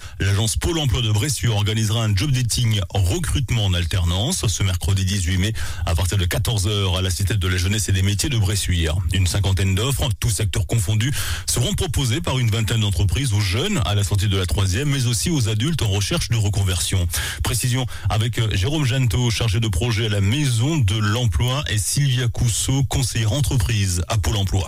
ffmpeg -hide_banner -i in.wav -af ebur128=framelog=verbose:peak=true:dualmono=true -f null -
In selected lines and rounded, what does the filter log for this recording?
Integrated loudness:
  I:         -17.2 LUFS
  Threshold: -27.2 LUFS
Loudness range:
  LRA:         1.1 LU
  Threshold: -37.2 LUFS
  LRA low:   -17.7 LUFS
  LRA high:  -16.6 LUFS
True peak:
  Peak:      -10.1 dBFS